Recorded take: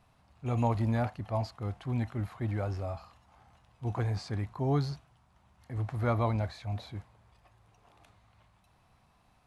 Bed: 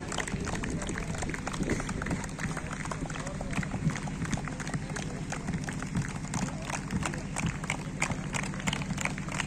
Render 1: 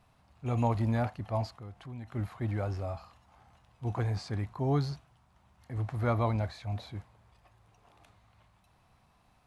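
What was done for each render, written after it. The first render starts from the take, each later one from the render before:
0:01.53–0:02.12: downward compressor 2 to 1, threshold −48 dBFS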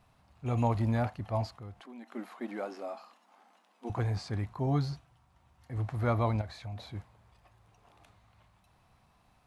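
0:01.80–0:03.90: linear-phase brick-wall high-pass 200 Hz
0:04.66–0:05.73: notch comb filter 210 Hz
0:06.41–0:06.89: downward compressor 5 to 1, threshold −36 dBFS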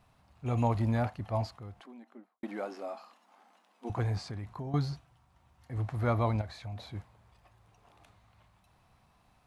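0:01.71–0:02.43: fade out and dull
0:04.24–0:04.74: downward compressor 12 to 1, threshold −34 dBFS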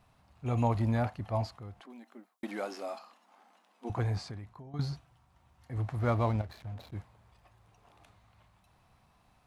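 0:01.90–0:02.99: high-shelf EQ 2,600 Hz +10 dB
0:04.23–0:04.79: fade out quadratic, to −11.5 dB
0:05.99–0:06.93: slack as between gear wheels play −42.5 dBFS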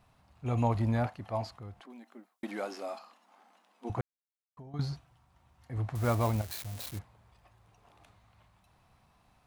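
0:01.06–0:01.46: low-shelf EQ 140 Hz −9.5 dB
0:04.01–0:04.57: silence
0:05.95–0:06.99: spike at every zero crossing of −29 dBFS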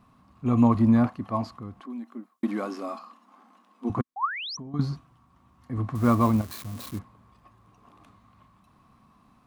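0:04.16–0:04.57: sound drawn into the spectrogram rise 730–6,100 Hz −35 dBFS
hollow resonant body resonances 240/1,100 Hz, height 15 dB, ringing for 25 ms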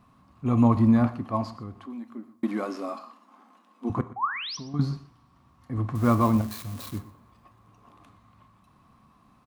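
single-tap delay 120 ms −18.5 dB
coupled-rooms reverb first 0.47 s, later 3.2 s, from −28 dB, DRR 12 dB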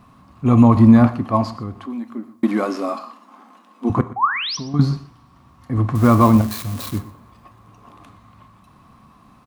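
level +9.5 dB
brickwall limiter −1 dBFS, peak gain reduction 3 dB

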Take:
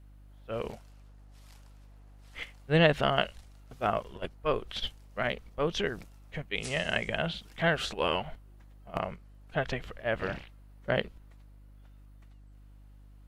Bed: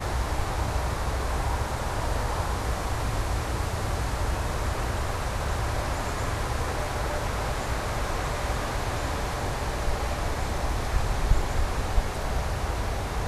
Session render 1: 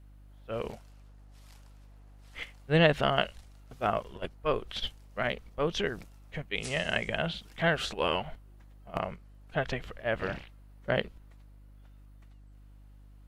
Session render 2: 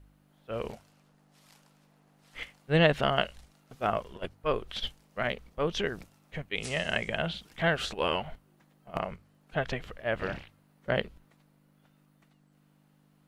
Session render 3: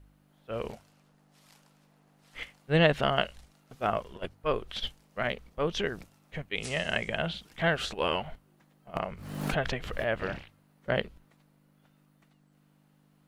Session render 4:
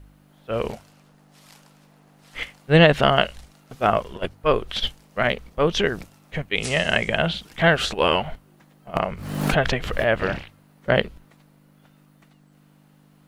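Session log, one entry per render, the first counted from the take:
no processing that can be heard
hum removal 50 Hz, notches 2
0:09.07–0:10.20: background raised ahead of every attack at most 50 dB per second
level +9.5 dB; brickwall limiter −3 dBFS, peak gain reduction 3 dB

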